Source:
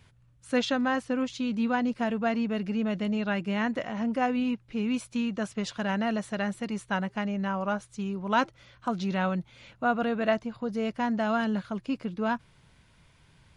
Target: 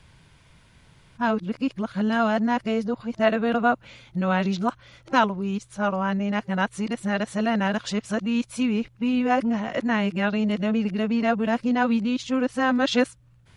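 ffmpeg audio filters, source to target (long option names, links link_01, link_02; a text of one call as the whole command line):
ffmpeg -i in.wav -af "areverse,volume=5dB" out.wav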